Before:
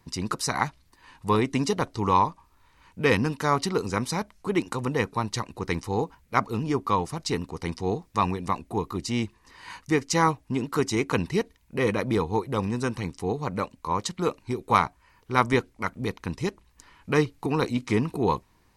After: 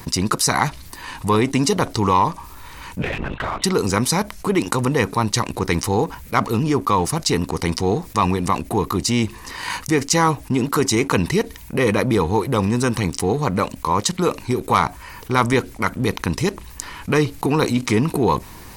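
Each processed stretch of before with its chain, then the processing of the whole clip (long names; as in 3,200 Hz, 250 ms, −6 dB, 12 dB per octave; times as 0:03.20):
0:03.02–0:03.64: high-pass filter 580 Hz 6 dB per octave + linear-prediction vocoder at 8 kHz whisper + downward compressor 10 to 1, threshold −35 dBFS
whole clip: high-shelf EQ 9,100 Hz +10.5 dB; leveller curve on the samples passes 1; envelope flattener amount 50%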